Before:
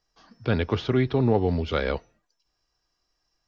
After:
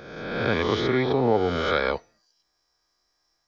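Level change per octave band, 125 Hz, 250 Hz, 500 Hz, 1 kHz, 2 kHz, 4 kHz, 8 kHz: -5.0 dB, -1.0 dB, +2.5 dB, +5.5 dB, +6.0 dB, +5.0 dB, n/a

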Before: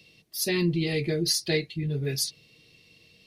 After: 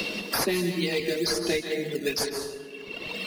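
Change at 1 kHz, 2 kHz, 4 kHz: +12.0, +4.0, +0.5 dB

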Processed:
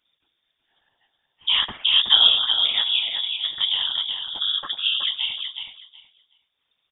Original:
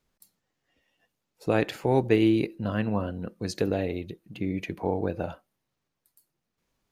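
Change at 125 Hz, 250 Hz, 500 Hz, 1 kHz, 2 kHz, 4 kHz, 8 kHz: under -20 dB, under -25 dB, under -20 dB, -1.5 dB, +6.0 dB, +28.5 dB, under -30 dB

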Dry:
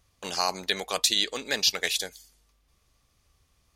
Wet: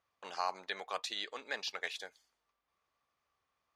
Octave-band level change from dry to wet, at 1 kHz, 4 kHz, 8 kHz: -6.5, -16.0, -21.5 dB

